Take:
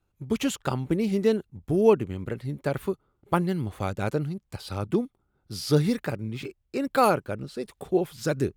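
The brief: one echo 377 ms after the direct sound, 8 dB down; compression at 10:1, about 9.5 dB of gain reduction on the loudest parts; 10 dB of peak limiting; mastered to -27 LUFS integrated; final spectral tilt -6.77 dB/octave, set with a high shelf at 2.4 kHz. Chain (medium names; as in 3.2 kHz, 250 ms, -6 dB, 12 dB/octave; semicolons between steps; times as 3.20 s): treble shelf 2.4 kHz -7.5 dB; compression 10:1, threshold -23 dBFS; peak limiter -22.5 dBFS; delay 377 ms -8 dB; trim +6.5 dB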